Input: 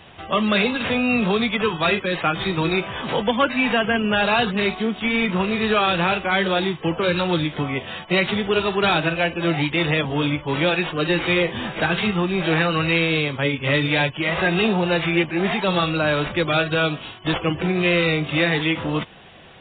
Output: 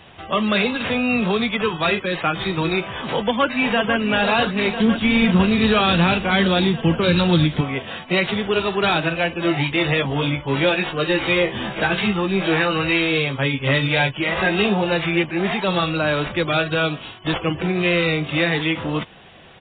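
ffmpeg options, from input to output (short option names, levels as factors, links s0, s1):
-filter_complex "[0:a]asplit=2[s0][s1];[s1]afade=t=in:st=3.1:d=0.01,afade=t=out:st=3.98:d=0.01,aecho=0:1:500|1000|1500|2000|2500|3000|3500|4000|4500|5000|5500|6000:0.375837|0.30067|0.240536|0.192429|0.153943|0.123154|0.0985235|0.0788188|0.0630551|0.050444|0.0403552|0.0322842[s2];[s0][s2]amix=inputs=2:normalize=0,asettb=1/sr,asplit=3[s3][s4][s5];[s3]atrim=end=4.804[s6];[s4]atrim=start=4.8:end=7.61,asetpts=PTS-STARTPTS,afade=t=in:d=0.004:c=qsin,afade=t=out:st=2.806:d=0.004:c=qsin,bass=f=250:g=10,treble=f=4000:g=10[s7];[s5]atrim=start=7.606[s8];[s6][s7]acrossfade=d=0.004:c1=hsin:c2=qsin[s9];[s9][s8]acrossfade=d=0.004:c1=qsin:c2=hsin,asettb=1/sr,asplit=3[s10][s11][s12];[s10]atrim=end=9.414[s13];[s11]atrim=start=9.41:end=14.92,asetpts=PTS-STARTPTS,afade=t=in:d=0.004:c=qsin,afade=t=out:st=5.506:d=0.004:c=qsin,asplit=2[s14][s15];[s15]adelay=15,volume=0.531[s16];[s14][s16]amix=inputs=2:normalize=0,atrim=end_sample=242991[s17];[s12]atrim=start=14.916[s18];[s13][s17]acrossfade=d=0.004:c1=hsin:c2=qsin[s19];[s19][s18]acrossfade=d=0.004:c1=qsin:c2=hsin"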